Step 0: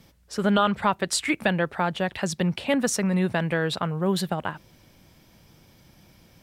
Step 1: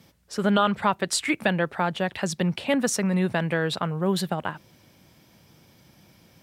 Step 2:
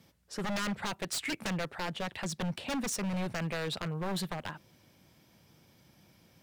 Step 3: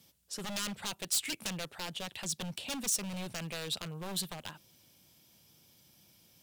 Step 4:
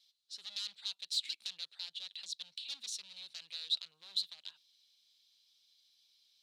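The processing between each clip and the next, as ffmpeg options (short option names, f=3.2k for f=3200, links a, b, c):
-af "highpass=85"
-af "aeval=exprs='0.0841*(abs(mod(val(0)/0.0841+3,4)-2)-1)':c=same,volume=-6.5dB"
-af "aexciter=amount=3.4:drive=3.8:freq=2.7k,volume=-6.5dB"
-af "bandpass=f=4k:t=q:w=6.6:csg=0,volume=6dB"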